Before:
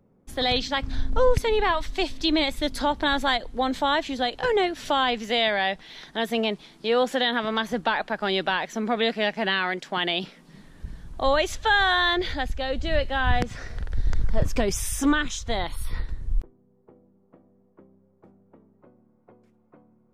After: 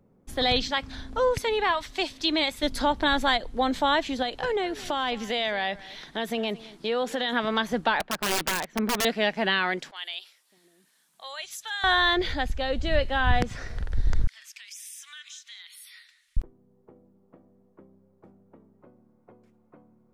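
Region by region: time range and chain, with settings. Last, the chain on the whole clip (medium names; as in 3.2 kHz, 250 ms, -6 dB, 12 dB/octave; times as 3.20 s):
0.71–2.63 s: high-pass 81 Hz 6 dB/octave + bass shelf 450 Hz -6.5 dB
4.22–7.33 s: compression 2.5:1, threshold -25 dBFS + delay 216 ms -19 dB
8.00–9.05 s: tone controls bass +3 dB, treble -13 dB + integer overflow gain 19 dB + upward expansion, over -43 dBFS
9.91–11.84 s: differentiator + three bands offset in time mids, highs, lows 50/600 ms, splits 380/5300 Hz
14.27–16.37 s: inverse Chebyshev high-pass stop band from 460 Hz, stop band 70 dB + compression 2.5:1, threshold -45 dBFS + filtered feedback delay 195 ms, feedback 39%, low-pass 3.9 kHz, level -16 dB
whole clip: none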